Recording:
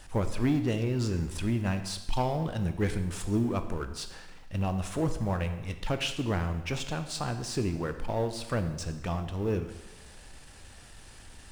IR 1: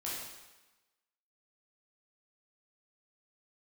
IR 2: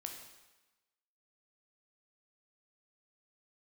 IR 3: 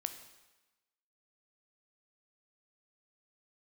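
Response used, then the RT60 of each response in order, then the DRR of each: 3; 1.1, 1.1, 1.1 seconds; −7.0, 2.5, 8.0 decibels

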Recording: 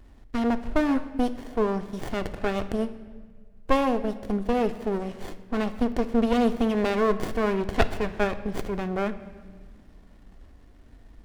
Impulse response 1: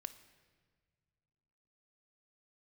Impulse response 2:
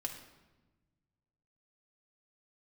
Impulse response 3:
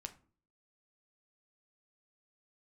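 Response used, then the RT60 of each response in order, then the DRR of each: 1; non-exponential decay, 1.2 s, 0.45 s; 9.0, 1.0, 6.0 decibels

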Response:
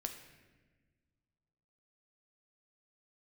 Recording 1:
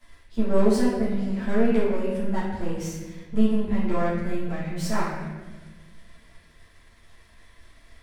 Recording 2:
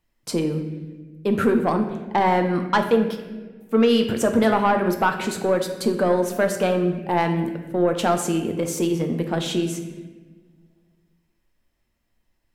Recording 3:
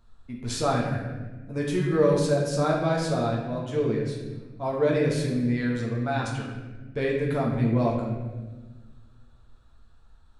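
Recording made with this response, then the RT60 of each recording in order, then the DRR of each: 2; 1.3, 1.4, 1.3 seconds; −11.0, 4.5, −3.0 decibels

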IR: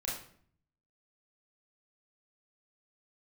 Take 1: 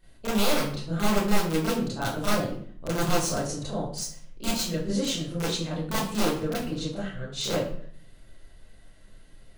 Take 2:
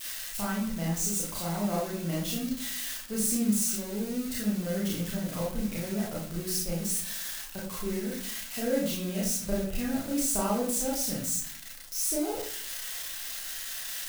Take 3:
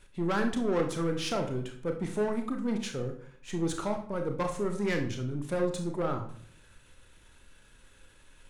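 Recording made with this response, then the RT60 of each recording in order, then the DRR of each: 2; 0.55, 0.55, 0.55 seconds; −11.5, −5.5, 4.0 decibels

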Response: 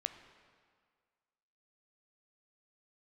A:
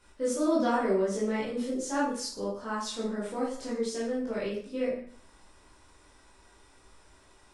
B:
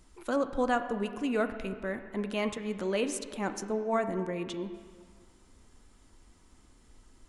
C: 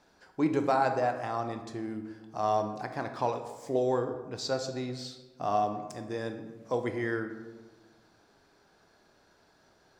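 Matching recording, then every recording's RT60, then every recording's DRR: B; 0.50, 1.9, 1.3 seconds; −7.5, 8.5, 6.5 decibels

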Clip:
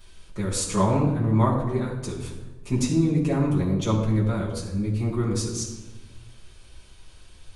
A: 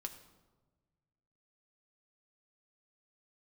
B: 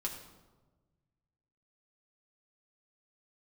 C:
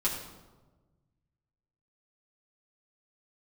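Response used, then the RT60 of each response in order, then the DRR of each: C; 1.3, 1.3, 1.3 seconds; 4.5, −2.0, −8.0 decibels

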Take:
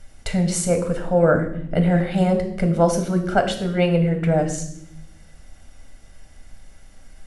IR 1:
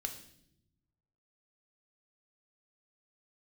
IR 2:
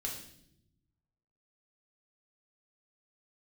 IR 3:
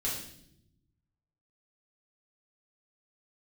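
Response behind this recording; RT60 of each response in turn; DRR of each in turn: 1; non-exponential decay, non-exponential decay, 0.75 s; 4.5, −1.5, −6.5 decibels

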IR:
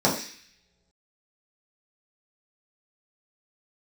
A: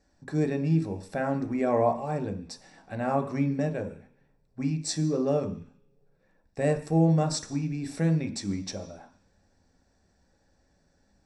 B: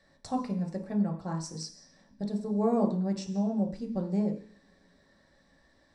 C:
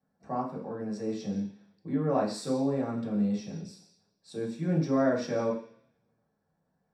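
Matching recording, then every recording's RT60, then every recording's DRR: C; non-exponential decay, non-exponential decay, non-exponential decay; 4.5, 0.5, −6.0 decibels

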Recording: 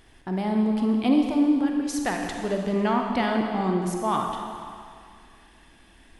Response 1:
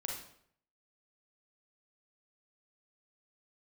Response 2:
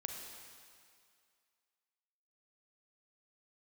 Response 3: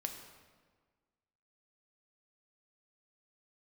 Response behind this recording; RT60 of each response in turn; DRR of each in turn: 2; 0.65, 2.2, 1.5 seconds; −1.0, 2.0, 4.0 decibels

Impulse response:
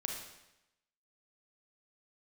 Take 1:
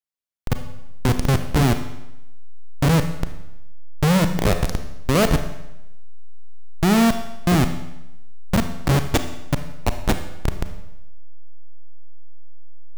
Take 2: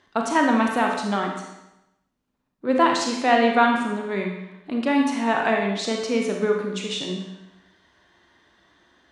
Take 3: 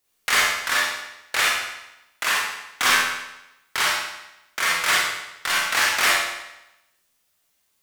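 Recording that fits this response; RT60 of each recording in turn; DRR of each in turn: 2; 0.90, 0.90, 0.90 seconds; 8.0, 1.0, −5.0 decibels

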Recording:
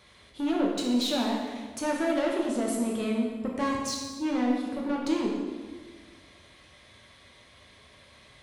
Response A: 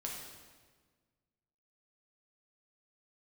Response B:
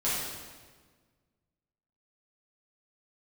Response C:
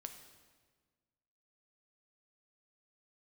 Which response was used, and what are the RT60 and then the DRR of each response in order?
A; 1.5, 1.5, 1.5 seconds; −2.5, −10.5, 6.0 decibels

